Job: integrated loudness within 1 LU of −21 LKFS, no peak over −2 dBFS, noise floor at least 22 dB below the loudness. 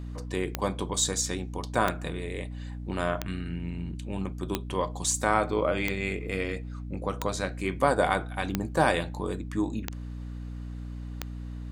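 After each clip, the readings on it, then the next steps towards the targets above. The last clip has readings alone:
number of clicks 9; mains hum 60 Hz; hum harmonics up to 300 Hz; level of the hum −35 dBFS; integrated loudness −30.0 LKFS; sample peak −7.5 dBFS; target loudness −21.0 LKFS
→ click removal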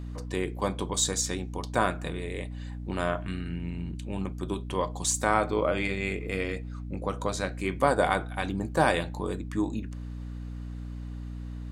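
number of clicks 0; mains hum 60 Hz; hum harmonics up to 300 Hz; level of the hum −35 dBFS
→ hum removal 60 Hz, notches 5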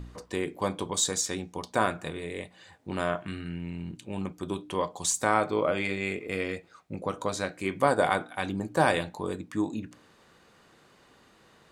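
mains hum none found; integrated loudness −30.0 LKFS; sample peak −7.5 dBFS; target loudness −21.0 LKFS
→ level +9 dB
brickwall limiter −2 dBFS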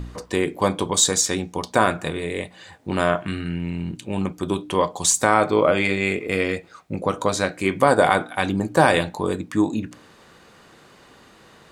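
integrated loudness −21.5 LKFS; sample peak −2.0 dBFS; background noise floor −51 dBFS

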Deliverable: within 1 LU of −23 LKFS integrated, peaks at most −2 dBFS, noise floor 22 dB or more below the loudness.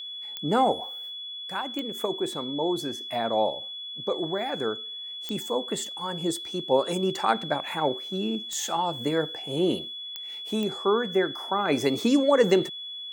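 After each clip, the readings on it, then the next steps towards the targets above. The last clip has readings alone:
number of clicks 6; interfering tone 3,400 Hz; level of the tone −35 dBFS; integrated loudness −27.5 LKFS; sample peak −8.0 dBFS; target loudness −23.0 LKFS
→ click removal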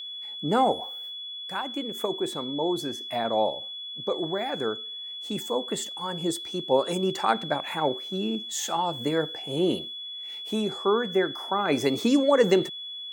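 number of clicks 0; interfering tone 3,400 Hz; level of the tone −35 dBFS
→ notch filter 3,400 Hz, Q 30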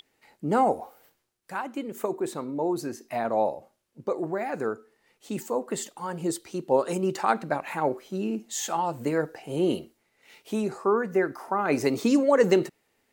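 interfering tone none found; integrated loudness −27.5 LKFS; sample peak −8.0 dBFS; target loudness −23.0 LKFS
→ level +4.5 dB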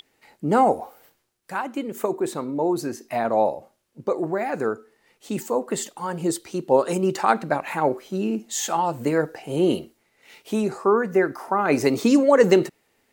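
integrated loudness −23.0 LKFS; sample peak −3.5 dBFS; background noise floor −68 dBFS

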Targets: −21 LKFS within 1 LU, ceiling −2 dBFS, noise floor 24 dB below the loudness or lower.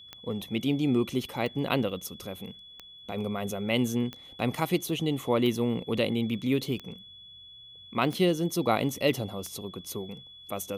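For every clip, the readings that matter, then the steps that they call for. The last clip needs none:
number of clicks 8; interfering tone 3,400 Hz; level of the tone −47 dBFS; integrated loudness −29.5 LKFS; sample peak −11.5 dBFS; target loudness −21.0 LKFS
→ click removal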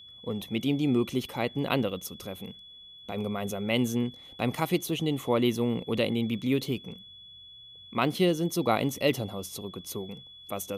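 number of clicks 0; interfering tone 3,400 Hz; level of the tone −47 dBFS
→ notch filter 3,400 Hz, Q 30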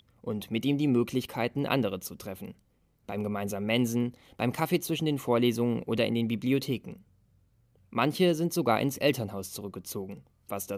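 interfering tone none found; integrated loudness −29.5 LKFS; sample peak −11.5 dBFS; target loudness −21.0 LKFS
→ level +8.5 dB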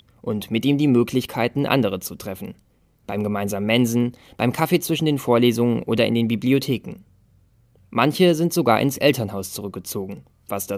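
integrated loudness −21.0 LKFS; sample peak −3.0 dBFS; background noise floor −59 dBFS

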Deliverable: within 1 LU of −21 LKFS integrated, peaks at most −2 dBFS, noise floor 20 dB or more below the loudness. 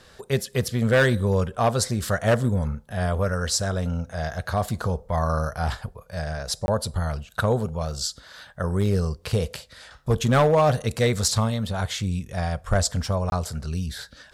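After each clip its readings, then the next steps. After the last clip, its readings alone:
share of clipped samples 0.7%; peaks flattened at −13.0 dBFS; number of dropouts 2; longest dropout 21 ms; integrated loudness −24.5 LKFS; sample peak −13.0 dBFS; target loudness −21.0 LKFS
→ clipped peaks rebuilt −13 dBFS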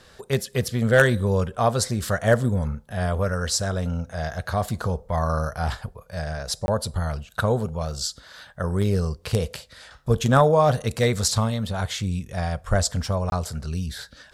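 share of clipped samples 0.0%; number of dropouts 2; longest dropout 21 ms
→ repair the gap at 0:06.66/0:13.30, 21 ms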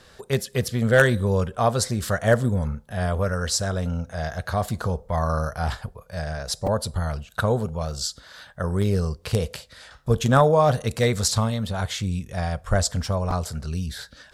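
number of dropouts 0; integrated loudness −24.0 LKFS; sample peak −4.0 dBFS; target loudness −21.0 LKFS
→ level +3 dB
brickwall limiter −2 dBFS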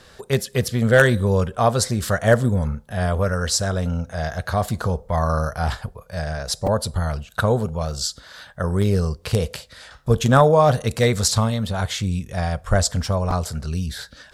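integrated loudness −21.5 LKFS; sample peak −2.0 dBFS; background noise floor −49 dBFS

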